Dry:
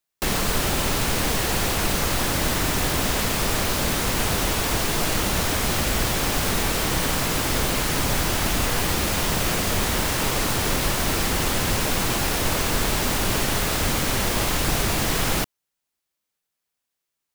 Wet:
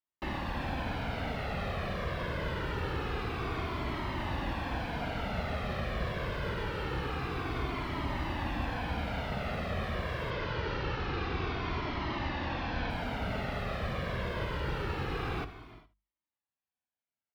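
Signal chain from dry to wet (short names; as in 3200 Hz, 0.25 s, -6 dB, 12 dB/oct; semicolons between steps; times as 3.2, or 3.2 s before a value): 10.3–12.9 delta modulation 32 kbps, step -21.5 dBFS; HPF 51 Hz; air absorption 390 m; notches 50/100/150/200 Hz; echo 76 ms -17.5 dB; non-linear reverb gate 0.43 s flat, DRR 12 dB; cascading flanger falling 0.25 Hz; gain -4 dB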